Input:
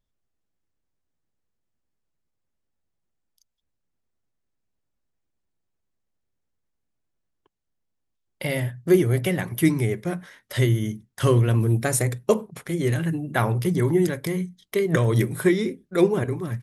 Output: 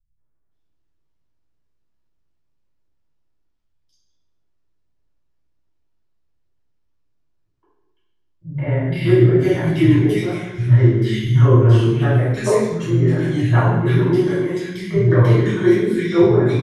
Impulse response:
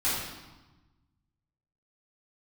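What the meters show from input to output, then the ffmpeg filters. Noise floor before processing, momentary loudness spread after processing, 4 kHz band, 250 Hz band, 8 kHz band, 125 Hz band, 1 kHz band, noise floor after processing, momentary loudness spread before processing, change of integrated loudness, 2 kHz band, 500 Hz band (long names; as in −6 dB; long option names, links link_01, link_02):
−78 dBFS, 8 LU, +3.5 dB, +6.5 dB, can't be measured, +8.5 dB, +5.0 dB, −65 dBFS, 9 LU, +7.0 dB, +3.5 dB, +6.0 dB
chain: -filter_complex "[0:a]lowpass=5100,acrossover=split=190|1900[link_01][link_02][link_03];[link_02]adelay=170[link_04];[link_03]adelay=510[link_05];[link_01][link_04][link_05]amix=inputs=3:normalize=0[link_06];[1:a]atrim=start_sample=2205,asetrate=52920,aresample=44100[link_07];[link_06][link_07]afir=irnorm=-1:irlink=0,volume=-3dB"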